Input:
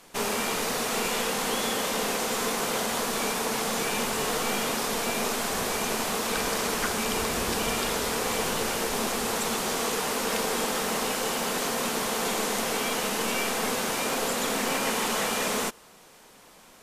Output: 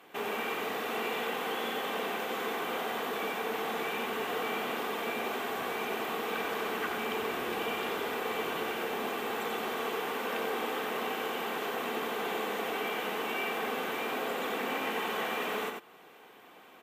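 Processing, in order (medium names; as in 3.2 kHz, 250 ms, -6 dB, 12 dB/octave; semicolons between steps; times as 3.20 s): high-pass 190 Hz 12 dB/octave; high-order bell 7.1 kHz -15.5 dB; comb 2.6 ms, depth 31%; in parallel at 0 dB: compression, threshold -41 dBFS, peak gain reduction 15.5 dB; on the sum: saturation -11.5 dBFS, distortion -34 dB; on a send: delay 91 ms -4.5 dB; on the sum: trim -7.5 dB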